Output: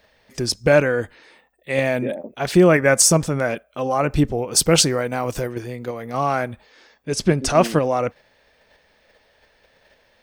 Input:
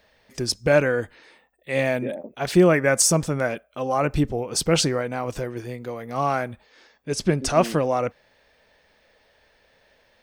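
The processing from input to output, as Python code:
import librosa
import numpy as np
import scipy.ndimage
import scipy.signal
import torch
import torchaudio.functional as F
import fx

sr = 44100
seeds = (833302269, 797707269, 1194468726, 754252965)

p1 = fx.high_shelf(x, sr, hz=8300.0, db=9.5, at=(4.51, 5.53))
p2 = fx.level_steps(p1, sr, step_db=10)
p3 = p1 + (p2 * 10.0 ** (0.5 / 20.0))
y = p3 * 10.0 ** (-1.0 / 20.0)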